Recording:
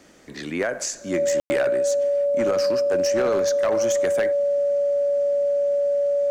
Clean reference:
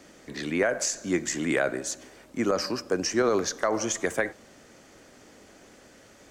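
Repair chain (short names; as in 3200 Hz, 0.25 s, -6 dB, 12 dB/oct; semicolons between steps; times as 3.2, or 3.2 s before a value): clip repair -16 dBFS; notch 570 Hz, Q 30; room tone fill 1.4–1.5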